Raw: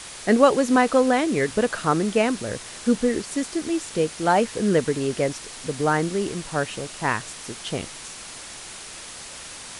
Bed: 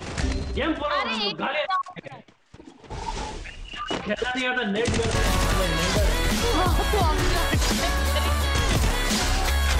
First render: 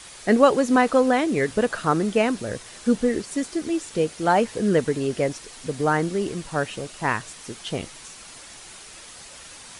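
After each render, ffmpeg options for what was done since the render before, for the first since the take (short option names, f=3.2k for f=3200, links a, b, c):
-af "afftdn=nr=6:nf=-39"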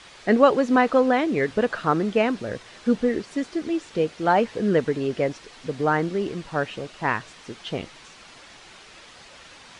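-af "lowpass=4.1k,lowshelf=f=110:g=-5"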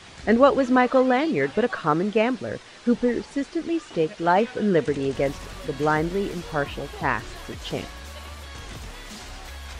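-filter_complex "[1:a]volume=-16.5dB[a];[0:a][a]amix=inputs=2:normalize=0"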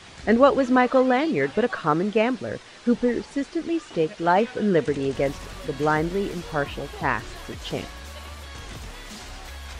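-af anull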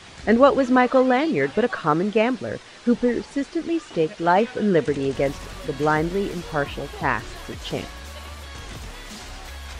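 -af "volume=1.5dB"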